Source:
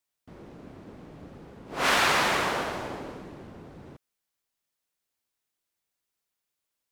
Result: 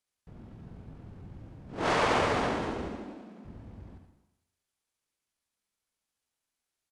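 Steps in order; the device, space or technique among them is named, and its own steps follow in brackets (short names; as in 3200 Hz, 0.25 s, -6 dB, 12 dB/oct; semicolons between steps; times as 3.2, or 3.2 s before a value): 2.87–3.45 elliptic high-pass 310 Hz, stop band 40 dB; monster voice (pitch shift -7.5 st; formant shift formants -2.5 st; low shelf 110 Hz +5 dB; echo 79 ms -8.5 dB; reverb RT60 0.90 s, pre-delay 68 ms, DRR 7.5 dB); gain -3.5 dB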